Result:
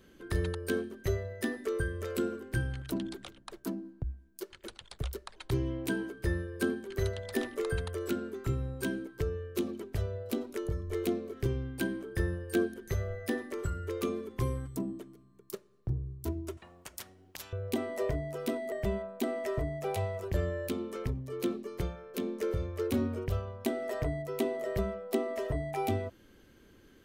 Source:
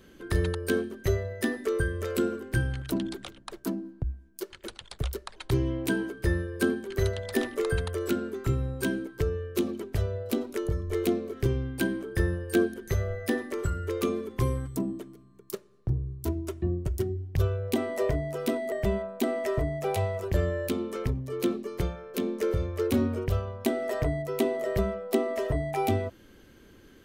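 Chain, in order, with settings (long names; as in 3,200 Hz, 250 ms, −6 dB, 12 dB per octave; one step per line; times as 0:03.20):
0:16.57–0:17.53: every bin compressed towards the loudest bin 10 to 1
level −5 dB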